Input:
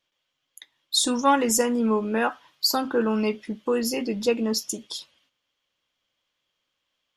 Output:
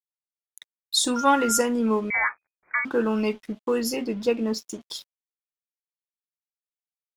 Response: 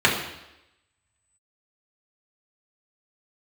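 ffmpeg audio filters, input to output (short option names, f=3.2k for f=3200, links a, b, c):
-filter_complex "[0:a]asettb=1/sr,asplit=3[a][b][c];[a]atrim=end=1.164[d];[b]atrim=start=1.16:end=1.6,asetpts=PTS-STARTPTS,afade=t=in:d=0.004:c=qsin,afade=t=out:st=0.436:d=0.004:c=qsin,aeval=exprs='val(0)+0.0447*sin(2*PI*1400*n/s)':c=same[e];[c]atrim=start=1.596[f];[d][e]acrossfade=d=0.004:c1=hsin:c2=qsin[g];[g][f]acrossfade=d=0.004:c1=qsin:c2=hsin,asettb=1/sr,asplit=3[h][i][j];[h]atrim=end=3.964[k];[i]atrim=start=3.96:end=4.81,asetpts=PTS-STARTPTS,afade=t=in:d=0.004:c=qsin,afade=t=out:st=0.846:d=0.004:c=qsin,aemphasis=mode=reproduction:type=50kf[l];[j]atrim=start=4.806[m];[k][l]acrossfade=d=0.004:c1=hsin:c2=qsin[n];[n][m]acrossfade=d=0.004:c1=qsin:c2=hsin,aeval=exprs='sgn(val(0))*max(abs(val(0))-0.00422,0)':c=same,asettb=1/sr,asplit=3[o][p][q];[o]atrim=end=2.104[r];[p]atrim=start=2.1:end=2.85,asetpts=PTS-STARTPTS,afade=t=in:d=0.004:c=qsin,afade=t=out:st=0.746:d=0.004:c=qsin,lowpass=f=2.1k:t=q:w=0.5098,lowpass=f=2.1k:t=q:w=0.6013,lowpass=f=2.1k:t=q:w=0.9,lowpass=f=2.1k:t=q:w=2.563,afreqshift=-2500[s];[q]atrim=start=2.846[t];[r][s]acrossfade=d=0.004:c1=hsin:c2=qsin[u];[u][t]acrossfade=d=0.004:c1=qsin:c2=hsin"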